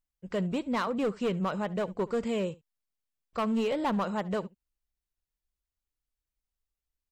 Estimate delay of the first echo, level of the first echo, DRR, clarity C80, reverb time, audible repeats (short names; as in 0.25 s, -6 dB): 71 ms, -21.5 dB, none, none, none, 1